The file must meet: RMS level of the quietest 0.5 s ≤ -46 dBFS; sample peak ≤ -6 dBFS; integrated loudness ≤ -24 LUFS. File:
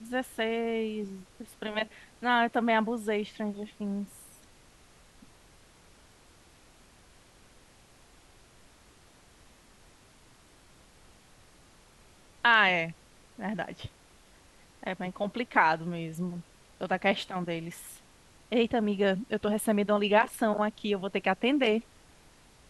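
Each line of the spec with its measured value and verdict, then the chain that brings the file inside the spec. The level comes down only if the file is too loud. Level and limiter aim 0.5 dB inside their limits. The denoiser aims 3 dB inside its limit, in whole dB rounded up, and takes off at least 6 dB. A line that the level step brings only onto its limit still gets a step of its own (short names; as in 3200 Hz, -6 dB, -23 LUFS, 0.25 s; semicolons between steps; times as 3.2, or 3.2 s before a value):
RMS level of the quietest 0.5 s -58 dBFS: OK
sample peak -9.0 dBFS: OK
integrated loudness -29.0 LUFS: OK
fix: none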